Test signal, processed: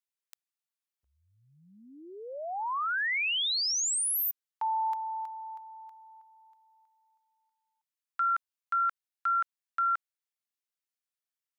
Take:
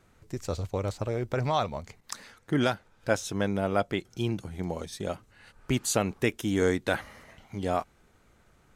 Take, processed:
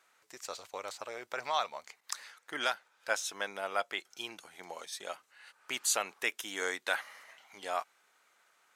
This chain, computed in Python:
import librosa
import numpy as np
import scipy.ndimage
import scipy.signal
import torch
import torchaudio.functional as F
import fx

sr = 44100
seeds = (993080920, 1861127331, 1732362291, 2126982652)

y = scipy.signal.sosfilt(scipy.signal.butter(2, 960.0, 'highpass', fs=sr, output='sos'), x)